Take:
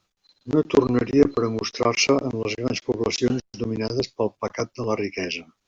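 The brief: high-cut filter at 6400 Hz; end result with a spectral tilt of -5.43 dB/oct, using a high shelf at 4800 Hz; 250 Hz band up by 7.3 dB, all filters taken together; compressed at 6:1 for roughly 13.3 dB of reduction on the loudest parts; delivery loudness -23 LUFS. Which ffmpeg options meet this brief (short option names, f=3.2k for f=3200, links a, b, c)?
-af "lowpass=6.4k,equalizer=f=250:t=o:g=8.5,highshelf=f=4.8k:g=-6.5,acompressor=threshold=-20dB:ratio=6,volume=3dB"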